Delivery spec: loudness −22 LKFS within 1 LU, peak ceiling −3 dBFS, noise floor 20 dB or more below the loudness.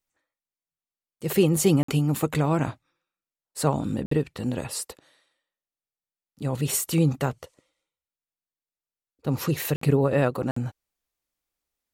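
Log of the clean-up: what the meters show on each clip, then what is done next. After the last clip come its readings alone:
number of dropouts 4; longest dropout 54 ms; integrated loudness −25.5 LKFS; sample peak −9.0 dBFS; target loudness −22.0 LKFS
→ repair the gap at 0:01.83/0:04.06/0:09.76/0:10.51, 54 ms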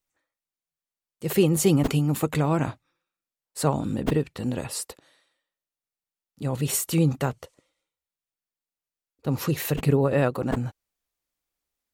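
number of dropouts 0; integrated loudness −25.0 LKFS; sample peak −9.0 dBFS; target loudness −22.0 LKFS
→ level +3 dB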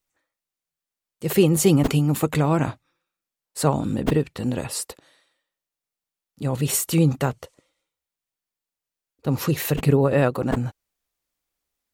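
integrated loudness −22.0 LKFS; sample peak −6.0 dBFS; background noise floor −89 dBFS

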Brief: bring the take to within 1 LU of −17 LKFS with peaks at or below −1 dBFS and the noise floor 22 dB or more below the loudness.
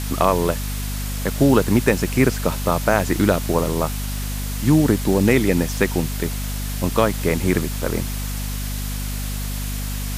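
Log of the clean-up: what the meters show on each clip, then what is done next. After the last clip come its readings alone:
mains hum 50 Hz; hum harmonics up to 250 Hz; level of the hum −24 dBFS; background noise floor −26 dBFS; target noise floor −43 dBFS; integrated loudness −21.0 LKFS; sample peak −1.5 dBFS; target loudness −17.0 LKFS
→ mains-hum notches 50/100/150/200/250 Hz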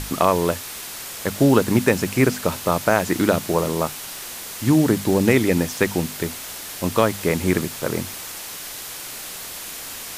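mains hum none found; background noise floor −34 dBFS; target noise floor −44 dBFS
→ noise reduction from a noise print 10 dB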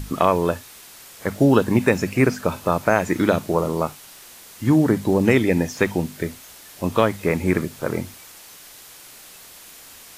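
background noise floor −44 dBFS; integrated loudness −21.0 LKFS; sample peak −2.0 dBFS; target loudness −17.0 LKFS
→ level +4 dB
brickwall limiter −1 dBFS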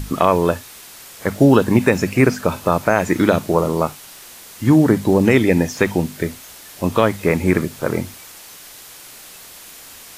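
integrated loudness −17.5 LKFS; sample peak −1.0 dBFS; background noise floor −40 dBFS

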